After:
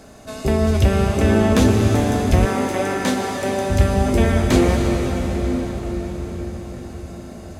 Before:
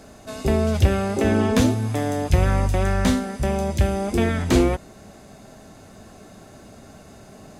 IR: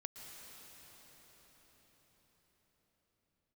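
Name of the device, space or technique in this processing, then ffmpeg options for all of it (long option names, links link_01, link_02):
cathedral: -filter_complex "[1:a]atrim=start_sample=2205[link_01];[0:a][link_01]afir=irnorm=-1:irlink=0,asettb=1/sr,asplit=3[link_02][link_03][link_04];[link_02]atrim=end=2.454[link_05];[link_03]atrim=start=2.45:end=3.7,asetpts=PTS-STARTPTS,afade=type=in:duration=0.004:curve=qsin,afade=type=out:start_time=1.246:duration=0.004:curve=qsin,highpass=260[link_06];[link_04]atrim=start=3.696[link_07];[link_05][link_06]acrossfade=duration=0.004:curve1=hsin:curve2=qsin[link_08];[link_08][link_07]acrossfade=duration=0.004:curve1=qsin:curve2=hsin,volume=7dB"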